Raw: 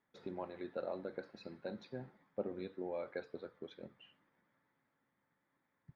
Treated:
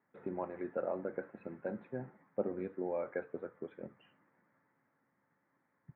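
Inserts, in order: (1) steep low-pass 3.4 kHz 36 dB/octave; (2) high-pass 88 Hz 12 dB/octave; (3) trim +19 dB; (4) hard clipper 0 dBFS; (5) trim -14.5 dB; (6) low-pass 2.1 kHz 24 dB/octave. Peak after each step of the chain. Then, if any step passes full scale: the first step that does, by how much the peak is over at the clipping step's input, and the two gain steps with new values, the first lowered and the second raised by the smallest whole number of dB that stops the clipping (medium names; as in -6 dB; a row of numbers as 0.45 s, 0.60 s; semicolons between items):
-24.5 dBFS, -25.0 dBFS, -6.0 dBFS, -6.0 dBFS, -20.5 dBFS, -20.5 dBFS; nothing clips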